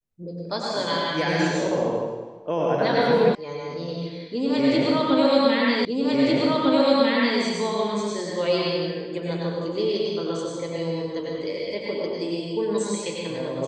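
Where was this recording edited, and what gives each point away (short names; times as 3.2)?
3.35 sound cut off
5.85 repeat of the last 1.55 s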